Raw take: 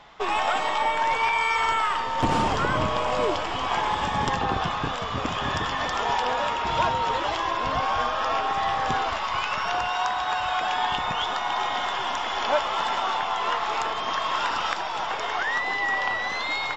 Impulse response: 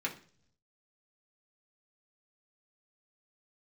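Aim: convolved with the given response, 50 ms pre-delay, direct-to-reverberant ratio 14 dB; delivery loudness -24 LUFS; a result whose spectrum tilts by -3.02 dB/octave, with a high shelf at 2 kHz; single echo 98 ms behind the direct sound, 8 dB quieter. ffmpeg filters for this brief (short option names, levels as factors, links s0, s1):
-filter_complex "[0:a]highshelf=f=2000:g=3.5,aecho=1:1:98:0.398,asplit=2[s0][s1];[1:a]atrim=start_sample=2205,adelay=50[s2];[s1][s2]afir=irnorm=-1:irlink=0,volume=0.126[s3];[s0][s3]amix=inputs=2:normalize=0,volume=0.944"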